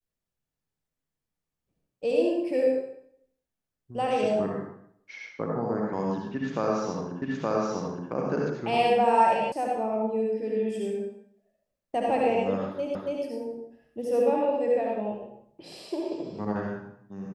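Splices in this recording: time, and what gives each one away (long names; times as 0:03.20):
0:07.22: the same again, the last 0.87 s
0:09.52: cut off before it has died away
0:12.95: the same again, the last 0.28 s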